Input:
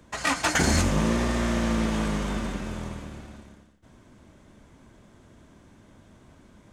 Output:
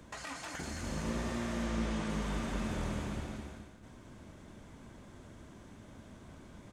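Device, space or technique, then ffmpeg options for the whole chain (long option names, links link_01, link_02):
de-esser from a sidechain: -filter_complex "[0:a]asettb=1/sr,asplit=3[link_01][link_02][link_03];[link_01]atrim=end=1.664[link_04];[link_02]atrim=start=1.66:end=2.1,asetpts=PTS-STARTPTS,afade=type=in:duration=0.004:curve=qsin,afade=type=out:start_time=0.436:duration=0.004:curve=qsin,lowpass=9000[link_05];[link_03]atrim=start=2.096[link_06];[link_04][link_05]acrossfade=duration=0.004:curve1=hsin:curve2=qsin[link_07];[link_07][link_06]acrossfade=duration=0.004:curve1=qsin:curve2=hsin,aecho=1:1:212|424|636|848:0.422|0.148|0.0517|0.0181,asplit=2[link_08][link_09];[link_09]highpass=frequency=6500:poles=1,apad=whole_len=416155[link_10];[link_08][link_10]sidechaincompress=threshold=-51dB:ratio=8:attack=4.6:release=33"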